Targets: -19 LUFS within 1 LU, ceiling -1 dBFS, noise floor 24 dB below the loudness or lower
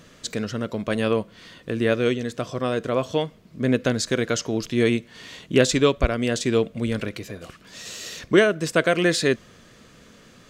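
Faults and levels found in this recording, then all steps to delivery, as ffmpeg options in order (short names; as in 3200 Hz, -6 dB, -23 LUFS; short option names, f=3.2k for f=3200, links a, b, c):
loudness -23.5 LUFS; peak -3.5 dBFS; loudness target -19.0 LUFS
-> -af "volume=4.5dB,alimiter=limit=-1dB:level=0:latency=1"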